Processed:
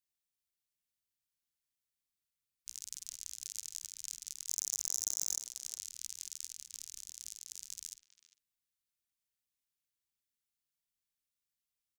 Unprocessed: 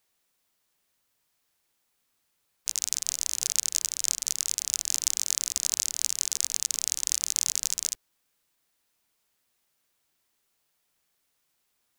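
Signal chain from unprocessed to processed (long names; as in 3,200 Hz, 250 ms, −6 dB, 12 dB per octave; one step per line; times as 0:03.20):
guitar amp tone stack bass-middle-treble 6-0-2
0:04.49–0:05.40: leveller curve on the samples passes 5
0:06.51–0:07.72: compressor whose output falls as the input rises −48 dBFS, ratio −1
double-tracking delay 49 ms −13 dB
far-end echo of a speakerphone 400 ms, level −11 dB
level −1.5 dB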